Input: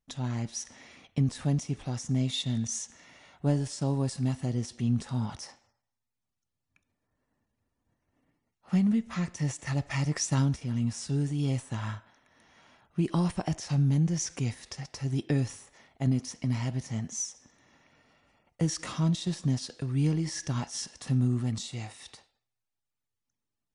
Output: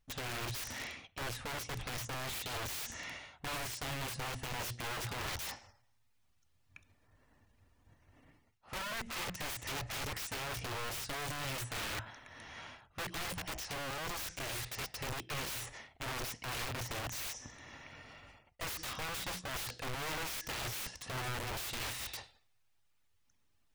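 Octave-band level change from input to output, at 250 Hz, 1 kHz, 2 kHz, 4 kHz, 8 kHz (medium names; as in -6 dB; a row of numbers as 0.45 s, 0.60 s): -20.0 dB, +1.0 dB, +4.5 dB, 0.0 dB, -5.5 dB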